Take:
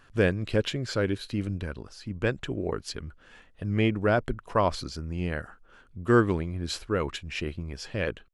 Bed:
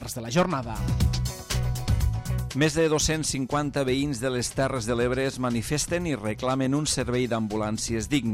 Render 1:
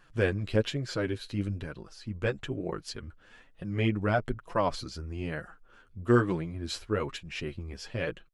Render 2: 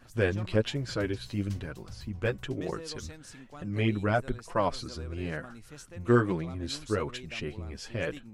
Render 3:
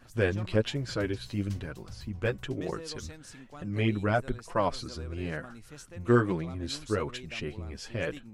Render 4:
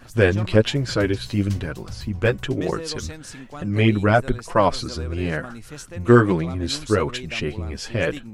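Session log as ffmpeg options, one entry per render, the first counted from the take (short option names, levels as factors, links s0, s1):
-af "flanger=delay=5.4:depth=5.3:regen=7:speed=1.1:shape=triangular"
-filter_complex "[1:a]volume=0.0794[s0];[0:a][s0]amix=inputs=2:normalize=0"
-af anull
-af "volume=3.16,alimiter=limit=0.794:level=0:latency=1"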